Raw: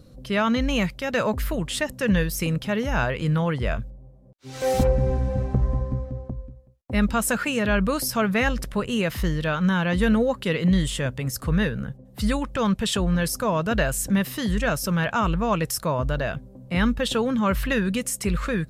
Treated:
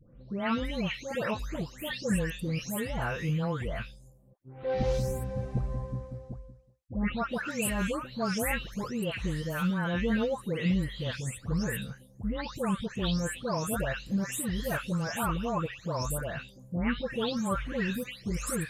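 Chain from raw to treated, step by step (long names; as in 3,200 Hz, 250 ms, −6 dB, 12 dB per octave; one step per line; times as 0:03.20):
every frequency bin delayed by itself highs late, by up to 401 ms
level −7 dB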